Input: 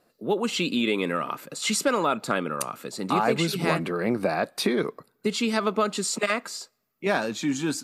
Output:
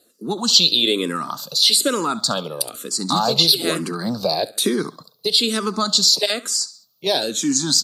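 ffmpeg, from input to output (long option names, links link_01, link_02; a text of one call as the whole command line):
ffmpeg -i in.wav -filter_complex "[0:a]highpass=84,highshelf=frequency=3100:width_type=q:width=3:gain=10.5,asplit=2[link_01][link_02];[link_02]aecho=0:1:68|136|204:0.112|0.046|0.0189[link_03];[link_01][link_03]amix=inputs=2:normalize=0,alimiter=level_in=4.5dB:limit=-1dB:release=50:level=0:latency=1,asplit=2[link_04][link_05];[link_05]afreqshift=-1.1[link_06];[link_04][link_06]amix=inputs=2:normalize=1,volume=1dB" out.wav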